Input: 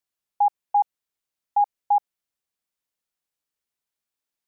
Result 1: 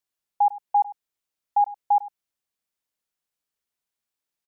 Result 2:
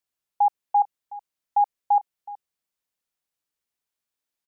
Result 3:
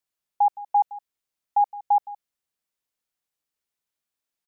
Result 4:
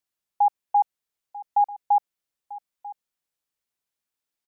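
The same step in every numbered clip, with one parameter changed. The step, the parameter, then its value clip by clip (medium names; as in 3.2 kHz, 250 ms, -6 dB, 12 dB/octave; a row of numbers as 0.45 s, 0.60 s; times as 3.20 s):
delay, time: 101 ms, 371 ms, 166 ms, 942 ms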